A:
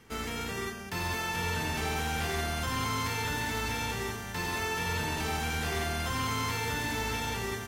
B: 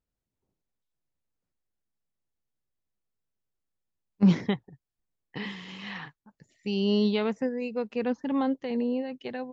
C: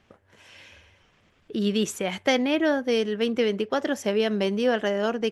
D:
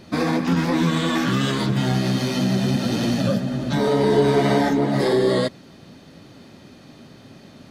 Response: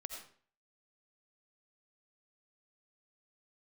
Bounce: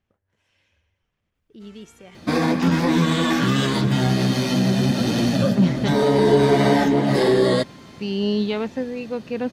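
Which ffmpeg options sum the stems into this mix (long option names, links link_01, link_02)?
-filter_complex "[0:a]lowpass=8200,adelay=1500,volume=-19dB[link_01];[1:a]adelay=1350,volume=2.5dB[link_02];[2:a]lowshelf=frequency=150:gain=10,volume=-18.5dB[link_03];[3:a]bandreject=frequency=1300:width=25,adelay=2150,volume=1.5dB[link_04];[link_01][link_02][link_03][link_04]amix=inputs=4:normalize=0"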